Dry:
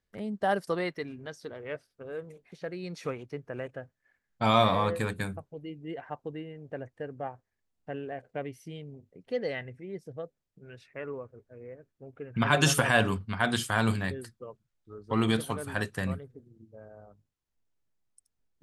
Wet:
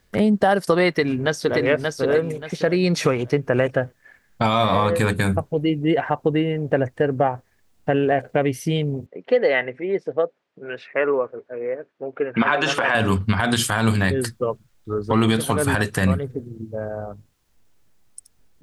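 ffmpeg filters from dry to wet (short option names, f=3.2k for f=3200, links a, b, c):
-filter_complex "[0:a]asplit=2[a][b];[b]afade=t=in:st=0.91:d=0.01,afade=t=out:st=1.6:d=0.01,aecho=0:1:580|1160|1740|2320:0.630957|0.189287|0.0567862|0.0170358[c];[a][c]amix=inputs=2:normalize=0,asettb=1/sr,asplit=3[d][e][f];[d]atrim=end=9.064[g];[e]atrim=start=9.06:end=12.95,asetpts=PTS-STARTPTS,afade=t=in:d=0.004:c=qsin,afade=t=out:st=3.886:d=0.004:c=qsin,highpass=380,lowpass=2.7k[h];[f]atrim=start=12.946[i];[g][h]acrossfade=d=0.004:c1=hsin:c2=qsin[j];[j][i]acrossfade=d=0.004:c1=qsin:c2=hsin,acompressor=threshold=-34dB:ratio=6,alimiter=level_in=26.5dB:limit=-1dB:release=50:level=0:latency=1,volume=-6dB"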